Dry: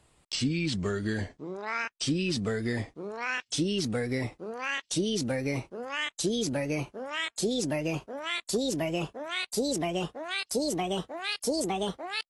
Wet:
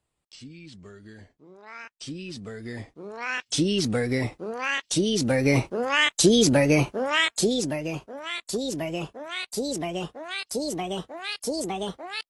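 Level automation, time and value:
0:01.17 −15.5 dB
0:01.91 −8 dB
0:02.51 −8 dB
0:03.56 +5 dB
0:05.17 +5 dB
0:05.57 +11 dB
0:07.16 +11 dB
0:07.80 0 dB

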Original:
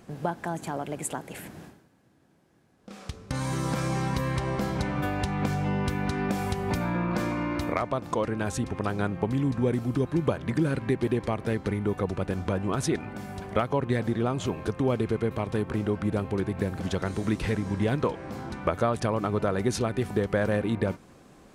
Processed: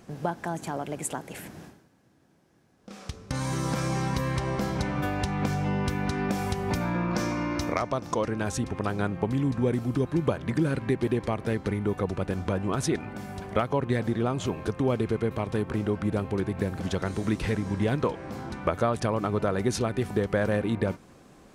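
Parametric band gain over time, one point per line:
parametric band 5,700 Hz 0.46 octaves
0:06.73 +3.5 dB
0:07.25 +12.5 dB
0:07.92 +12.5 dB
0:08.74 +1 dB

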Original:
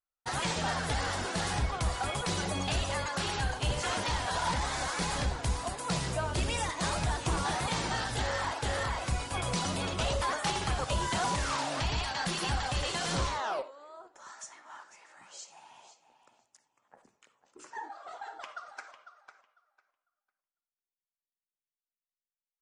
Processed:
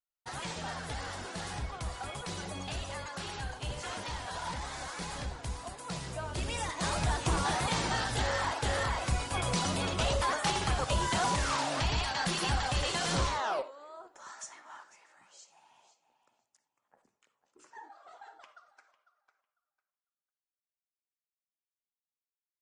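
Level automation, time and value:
0:06.06 −7 dB
0:07.11 +1 dB
0:14.59 +1 dB
0:15.36 −8.5 dB
0:18.29 −8.5 dB
0:18.76 −17 dB

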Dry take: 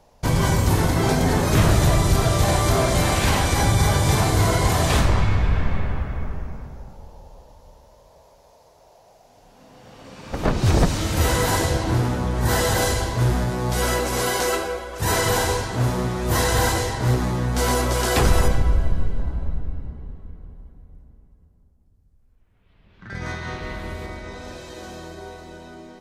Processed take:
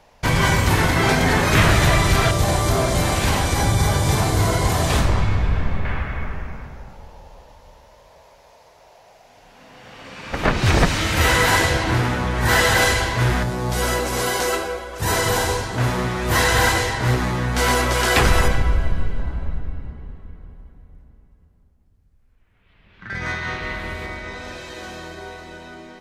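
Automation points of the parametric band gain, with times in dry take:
parametric band 2,100 Hz 1.9 octaves
+10.5 dB
from 0:02.31 0 dB
from 0:05.85 +11 dB
from 0:13.43 +2 dB
from 0:15.78 +8.5 dB

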